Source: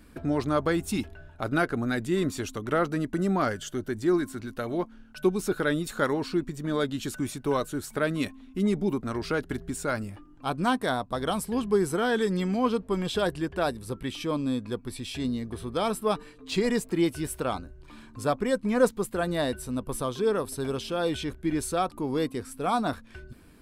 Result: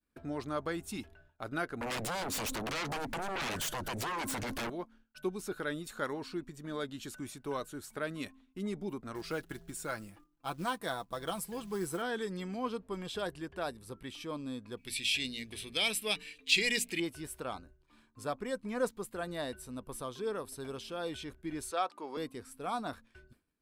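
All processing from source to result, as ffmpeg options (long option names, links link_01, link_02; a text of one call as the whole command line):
ffmpeg -i in.wav -filter_complex "[0:a]asettb=1/sr,asplit=3[link_01][link_02][link_03];[link_01]atrim=end=1.814[link_04];[link_02]atrim=start=1.81:end=4.7,asetpts=PTS-STARTPTS,afade=type=in:duration=0.004:curve=qsin,afade=type=out:start_time=2.886:duration=0.004:curve=qsin,acompressor=threshold=-36dB:ratio=4:attack=3.2:release=140:knee=1:detection=peak,aeval=exprs='0.0708*sin(PI/2*7.94*val(0)/0.0708)':channel_layout=same[link_05];[link_03]atrim=start=4.696[link_06];[link_04][link_05]acrossfade=duration=0.004:curve1=hsin:curve2=qsin[link_07];[link_07][link_06]acrossfade=duration=0.004:curve1=qsin:curve2=hsin,asettb=1/sr,asplit=3[link_08][link_09][link_10];[link_08]atrim=end=9.154[link_11];[link_09]atrim=start=9.15:end=12.02,asetpts=PTS-STARTPTS,afade=type=in:duration=0.004:curve=qsin,afade=type=out:start_time=2.866:duration=0.004:curve=qsin,highshelf=frequency=12000:gain=9.5,aecho=1:1:6:0.46,atrim=end_sample=126567,acrusher=bits=6:mode=log:mix=0:aa=0.000001[link_12];[link_10]atrim=start=12.016[link_13];[link_11][link_12]acrossfade=duration=0.004:curve1=hsin:curve2=qsin[link_14];[link_14][link_13]acrossfade=duration=0.004:curve1=qsin:curve2=hsin,asettb=1/sr,asplit=3[link_15][link_16][link_17];[link_15]atrim=end=14.774[link_18];[link_16]atrim=start=14.77:end=17,asetpts=PTS-STARTPTS,afade=type=in:duration=0.004:curve=qsin,afade=type=out:start_time=2.226:duration=0.004:curve=qsin,highshelf=frequency=1700:width_type=q:width=3:gain=12,bandreject=frequency=60:width_type=h:width=6,bandreject=frequency=120:width_type=h:width=6,bandreject=frequency=180:width_type=h:width=6,bandreject=frequency=240:width_type=h:width=6[link_19];[link_17]atrim=start=16.996[link_20];[link_18][link_19]acrossfade=duration=0.004:curve1=hsin:curve2=qsin[link_21];[link_21][link_20]acrossfade=duration=0.004:curve1=qsin:curve2=hsin,asettb=1/sr,asplit=3[link_22][link_23][link_24];[link_22]atrim=end=21.714[link_25];[link_23]atrim=start=21.71:end=22.17,asetpts=PTS-STARTPTS,afade=type=in:duration=0.004:curve=qsin,afade=type=out:start_time=0.456:duration=0.004:curve=qsin,highpass=510,lowpass=6200,acontrast=29[link_26];[link_24]atrim=start=22.166[link_27];[link_25][link_26]acrossfade=duration=0.004:curve1=hsin:curve2=qsin[link_28];[link_28][link_27]acrossfade=duration=0.004:curve1=qsin:curve2=hsin,lowshelf=frequency=430:gain=-5,agate=range=-33dB:threshold=-44dB:ratio=3:detection=peak,volume=-8.5dB" out.wav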